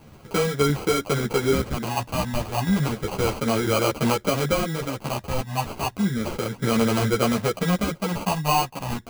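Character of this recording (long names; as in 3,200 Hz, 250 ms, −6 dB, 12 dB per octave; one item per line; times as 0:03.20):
phaser sweep stages 12, 0.32 Hz, lowest notch 390–2,300 Hz
aliases and images of a low sample rate 1,800 Hz, jitter 0%
a shimmering, thickened sound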